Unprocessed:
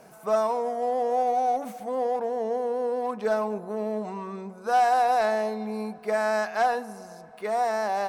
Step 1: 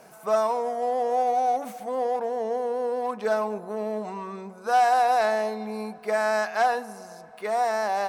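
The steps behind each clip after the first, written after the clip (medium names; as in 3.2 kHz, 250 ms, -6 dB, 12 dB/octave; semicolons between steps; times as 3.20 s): bass shelf 440 Hz -5.5 dB; trim +2.5 dB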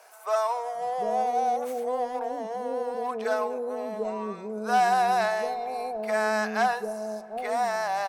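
bands offset in time highs, lows 750 ms, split 540 Hz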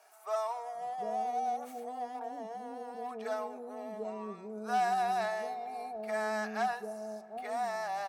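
comb of notches 510 Hz; trim -7.5 dB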